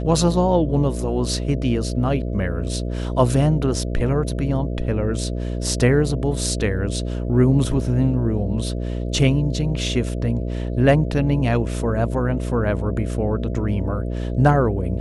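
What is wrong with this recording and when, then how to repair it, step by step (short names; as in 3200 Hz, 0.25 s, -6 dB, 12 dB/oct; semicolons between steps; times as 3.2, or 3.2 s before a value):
buzz 60 Hz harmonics 11 -25 dBFS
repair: de-hum 60 Hz, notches 11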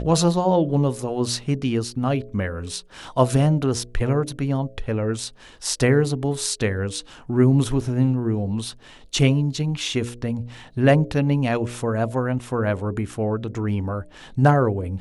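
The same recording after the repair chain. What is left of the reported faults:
none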